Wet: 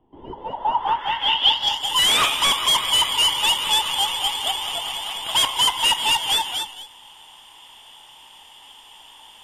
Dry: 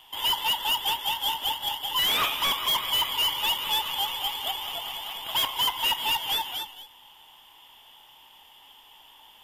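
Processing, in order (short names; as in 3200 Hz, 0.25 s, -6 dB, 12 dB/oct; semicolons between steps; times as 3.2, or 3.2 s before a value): low-pass sweep 320 Hz -> 8700 Hz, 0.22–1.92; gain +6 dB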